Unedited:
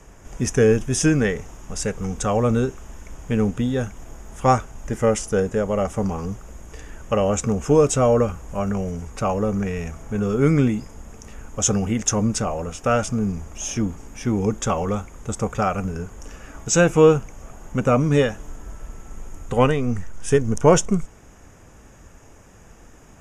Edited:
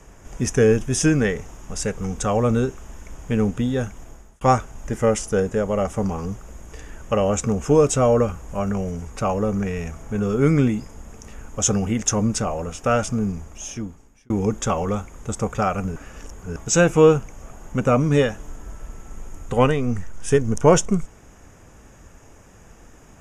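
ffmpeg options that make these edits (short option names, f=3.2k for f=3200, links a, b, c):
-filter_complex "[0:a]asplit=5[a][b][c][d][e];[a]atrim=end=4.41,asetpts=PTS-STARTPTS,afade=t=out:st=3.82:d=0.59:c=qsin[f];[b]atrim=start=4.41:end=14.3,asetpts=PTS-STARTPTS,afade=t=in:d=0.004:c=hsin,afade=t=out:st=8.78:d=1.11[g];[c]atrim=start=14.3:end=15.962,asetpts=PTS-STARTPTS,afade=t=in:d=0.004:c=hsin[h];[d]atrim=start=15.958:end=16.562,asetpts=PTS-STARTPTS,areverse[i];[e]atrim=start=16.558[j];[f][g][h]concat=n=3:v=0:a=1[k];[k][i]acrossfade=d=0.004:c1=hsin:c2=hsin[l];[l][j]acrossfade=d=0.004:c1=hsin:c2=hsin"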